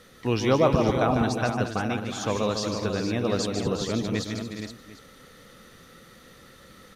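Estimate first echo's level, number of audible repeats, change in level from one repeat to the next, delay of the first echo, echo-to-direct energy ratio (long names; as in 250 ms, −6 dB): −6.0 dB, 6, repeats not evenly spaced, 150 ms, −2.0 dB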